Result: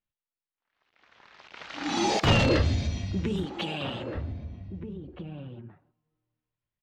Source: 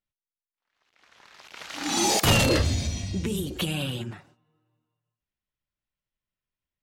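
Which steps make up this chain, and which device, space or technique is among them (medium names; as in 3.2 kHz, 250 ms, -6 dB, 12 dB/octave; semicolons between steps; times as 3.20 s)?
shout across a valley (distance through air 170 m; echo from a far wall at 270 m, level -9 dB); 3.45–4.15 s: high-pass 380 Hz 6 dB/octave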